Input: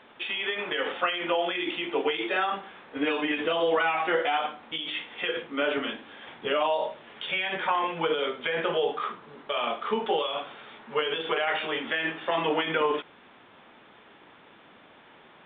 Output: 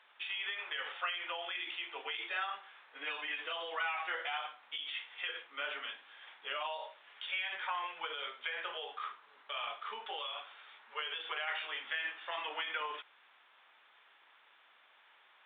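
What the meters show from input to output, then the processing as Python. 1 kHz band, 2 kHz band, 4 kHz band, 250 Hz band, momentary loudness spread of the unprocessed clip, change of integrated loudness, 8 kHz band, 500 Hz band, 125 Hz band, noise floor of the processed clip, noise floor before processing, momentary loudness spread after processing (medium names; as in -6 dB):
-11.5 dB, -8.0 dB, -7.5 dB, -29.5 dB, 9 LU, -11.0 dB, no reading, -20.5 dB, under -35 dB, -65 dBFS, -54 dBFS, 9 LU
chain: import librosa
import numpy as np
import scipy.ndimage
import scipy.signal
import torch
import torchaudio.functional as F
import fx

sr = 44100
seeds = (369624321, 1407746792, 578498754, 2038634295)

y = scipy.signal.sosfilt(scipy.signal.butter(2, 1100.0, 'highpass', fs=sr, output='sos'), x)
y = F.gain(torch.from_numpy(y), -7.5).numpy()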